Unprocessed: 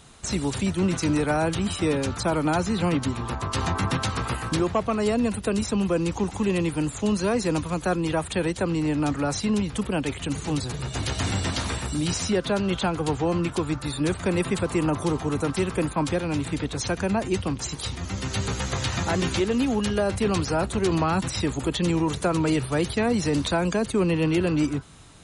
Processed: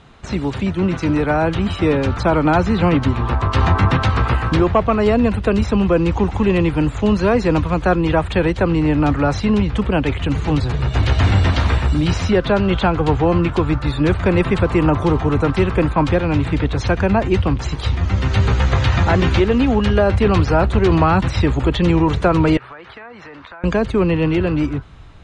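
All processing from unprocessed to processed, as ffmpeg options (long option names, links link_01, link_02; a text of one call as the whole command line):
ffmpeg -i in.wav -filter_complex "[0:a]asettb=1/sr,asplit=3[link_01][link_02][link_03];[link_01]atrim=end=22.574[link_04];[link_02]atrim=start=22.57:end=23.64,asetpts=PTS-STARTPTS,afade=type=in:duration=0.004:curve=qsin,afade=type=out:start_time=1.066:duration=0.004:curve=qsin,bandpass=frequency=1400:width_type=q:width=1.4,acompressor=threshold=-41dB:ratio=12:attack=3.2:release=140:knee=1:detection=peak[link_05];[link_03]atrim=start=23.636[link_06];[link_04][link_05]acrossfade=duration=0.004:curve1=hsin:curve2=qsin[link_07];[link_07][link_06]acrossfade=duration=0.004:curve1=qsin:curve2=hsin,lowpass=2800,asubboost=boost=3:cutoff=97,dynaudnorm=framelen=260:gausssize=13:maxgain=4dB,volume=5.5dB" out.wav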